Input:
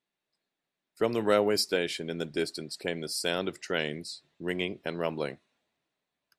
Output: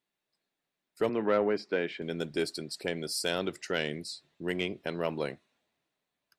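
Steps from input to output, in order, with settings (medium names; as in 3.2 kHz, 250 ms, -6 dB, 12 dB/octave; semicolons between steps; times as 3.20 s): 1.09–2.02 s: Chebyshev band-pass 180–2000 Hz, order 2; saturation -16.5 dBFS, distortion -19 dB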